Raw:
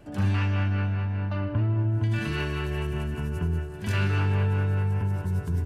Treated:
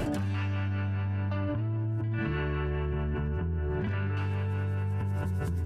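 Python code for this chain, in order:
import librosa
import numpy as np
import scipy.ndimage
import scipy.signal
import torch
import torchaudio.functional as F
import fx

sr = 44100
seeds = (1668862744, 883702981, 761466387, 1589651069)

y = fx.lowpass(x, sr, hz=1900.0, slope=12, at=(2.01, 4.17))
y = fx.env_flatten(y, sr, amount_pct=100)
y = y * librosa.db_to_amplitude(-8.5)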